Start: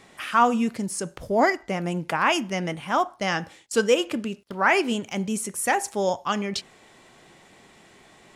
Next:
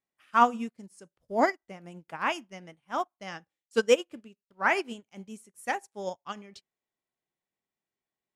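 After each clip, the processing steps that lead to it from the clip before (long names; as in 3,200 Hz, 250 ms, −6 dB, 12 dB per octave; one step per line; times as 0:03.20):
expander for the loud parts 2.5 to 1, over −42 dBFS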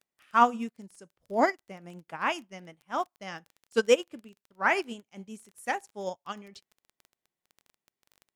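surface crackle 15 per second −40 dBFS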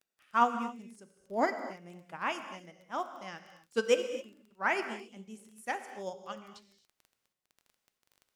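reverb whose tail is shaped and stops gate 290 ms flat, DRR 8.5 dB
level −5 dB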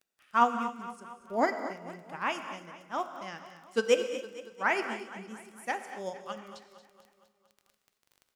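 repeating echo 230 ms, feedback 57%, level −14.5 dB
level +2 dB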